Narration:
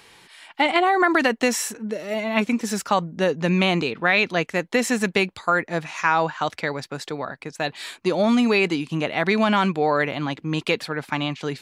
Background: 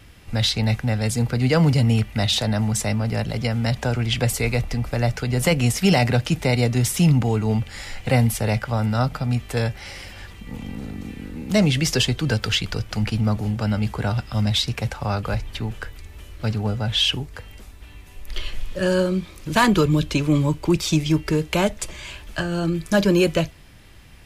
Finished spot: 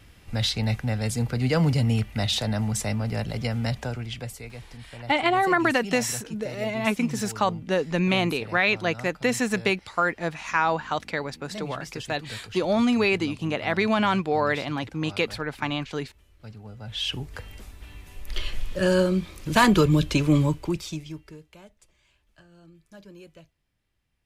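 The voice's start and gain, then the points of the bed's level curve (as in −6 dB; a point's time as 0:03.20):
4.50 s, −3.0 dB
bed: 0:03.66 −4.5 dB
0:04.53 −19 dB
0:16.68 −19 dB
0:17.34 −1 dB
0:20.42 −1 dB
0:21.59 −29.5 dB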